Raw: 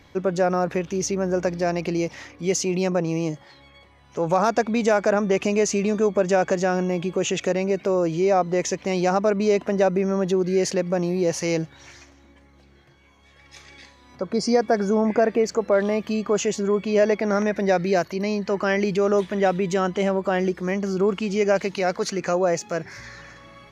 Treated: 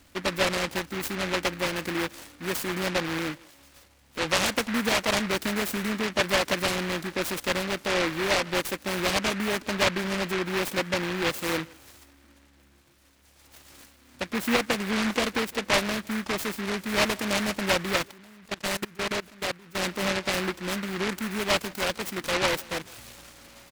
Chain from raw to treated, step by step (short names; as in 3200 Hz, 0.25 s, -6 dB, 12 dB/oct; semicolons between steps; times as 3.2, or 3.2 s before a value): comb 3.6 ms, depth 46%; speakerphone echo 0.16 s, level -22 dB; 18.11–19.83 level quantiser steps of 22 dB; noise-modulated delay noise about 1600 Hz, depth 0.3 ms; gain -6 dB